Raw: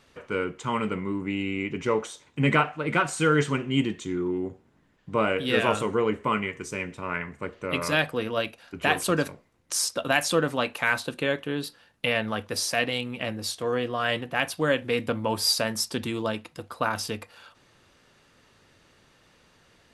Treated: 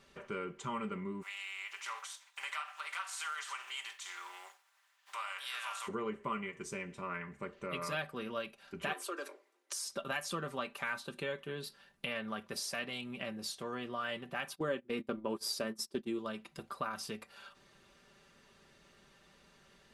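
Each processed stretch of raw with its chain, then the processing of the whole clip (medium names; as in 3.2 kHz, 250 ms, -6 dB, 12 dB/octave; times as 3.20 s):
1.21–5.87 s: spectral contrast reduction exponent 0.66 + compression 2:1, threshold -28 dBFS + high-pass 900 Hz 24 dB/octave
8.93–9.89 s: steep high-pass 280 Hz 96 dB/octave + compression 2:1, threshold -29 dBFS
14.55–16.19 s: gate -31 dBFS, range -19 dB + peaking EQ 340 Hz +11.5 dB 1.1 oct
whole clip: dynamic bell 1.2 kHz, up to +5 dB, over -43 dBFS, Q 3.8; comb 5.1 ms, depth 65%; compression 2:1, threshold -37 dBFS; trim -5.5 dB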